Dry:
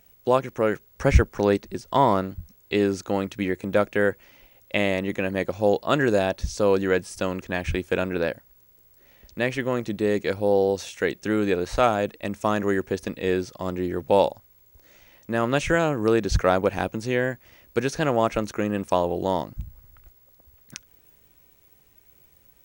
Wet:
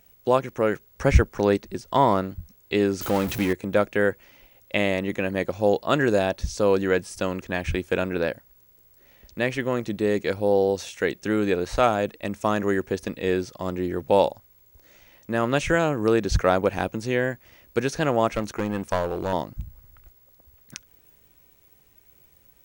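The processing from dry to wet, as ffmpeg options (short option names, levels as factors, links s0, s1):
-filter_complex "[0:a]asettb=1/sr,asplit=3[s0][s1][s2];[s0]atrim=end=3.014[s3];[s1]atrim=start=3.01:end=3.53,asetpts=PTS-STARTPTS,afade=t=in:d=0.004:c=qsin,afade=t=out:st=0.516:d=0.004:c=qsin,aeval=exprs='val(0)+0.5*0.0473*sgn(val(0))':c=same[s4];[s2]atrim=start=3.526[s5];[s3][s4]acrossfade=d=0.004:c1=hsin:c2=qsin[s6];[s6][s5]acrossfade=d=0.004:c1=qsin:c2=hsin,asettb=1/sr,asplit=3[s7][s8][s9];[s7]atrim=end=18.364[s10];[s8]atrim=start=18.36:end=19.33,asetpts=PTS-STARTPTS,afade=t=in:d=0.004:c=qsin,afade=t=out:st=0.966:d=0.004:c=qsin,aeval=exprs='clip(val(0),-1,0.0708)':c=same[s11];[s9]atrim=start=19.326[s12];[s10][s11]acrossfade=d=0.004:c1=hsin:c2=qsin[s13];[s13][s12]acrossfade=d=0.004:c1=qsin:c2=hsin"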